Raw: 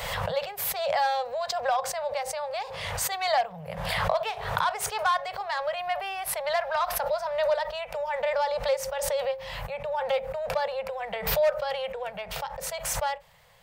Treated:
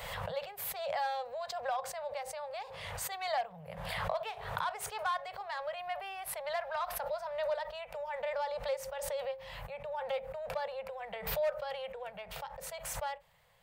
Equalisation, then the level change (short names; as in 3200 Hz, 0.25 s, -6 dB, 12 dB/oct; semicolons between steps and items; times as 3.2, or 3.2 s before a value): bell 5600 Hz -4 dB 0.66 oct; -9.0 dB